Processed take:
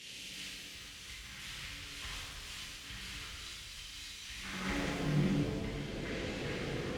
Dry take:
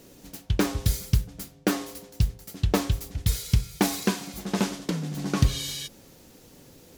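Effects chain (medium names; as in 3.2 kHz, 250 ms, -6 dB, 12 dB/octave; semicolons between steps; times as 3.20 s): one-bit delta coder 64 kbps, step -28.5 dBFS; band-pass sweep 2.8 kHz -> 460 Hz, 4.31–4.92 s; in parallel at -2 dB: peak limiter -31.5 dBFS, peak gain reduction 12.5 dB; on the sum: amplifier tone stack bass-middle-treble 10-0-1; ever faster or slower copies 346 ms, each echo -7 st, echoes 2, each echo -6 dB; 4.64–5.22 s: waveshaping leveller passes 2; slow attack 319 ms; bass shelf 130 Hz +7 dB; pitch-shifted reverb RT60 2.1 s, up +7 st, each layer -8 dB, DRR -6.5 dB; trim +12 dB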